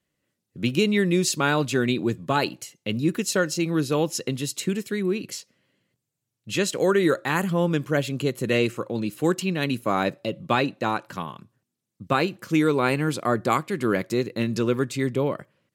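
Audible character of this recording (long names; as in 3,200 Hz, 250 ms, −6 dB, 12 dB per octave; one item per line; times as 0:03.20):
background noise floor −82 dBFS
spectral slope −5.0 dB per octave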